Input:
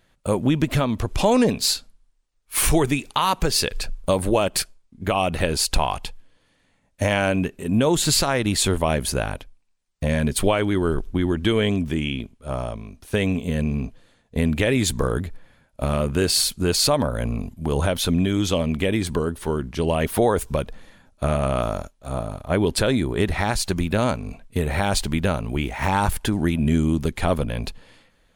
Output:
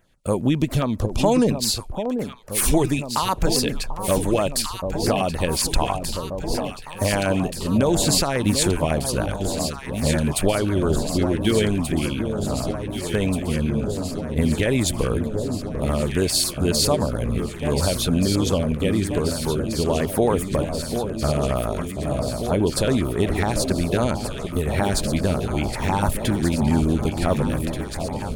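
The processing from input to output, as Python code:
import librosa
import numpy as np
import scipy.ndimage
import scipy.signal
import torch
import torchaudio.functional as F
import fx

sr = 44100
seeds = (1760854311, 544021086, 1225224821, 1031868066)

y = fx.echo_alternate(x, sr, ms=741, hz=970.0, feedback_pct=85, wet_db=-7)
y = fx.filter_lfo_notch(y, sr, shape='saw_down', hz=7.3, low_hz=730.0, high_hz=4500.0, q=1.0)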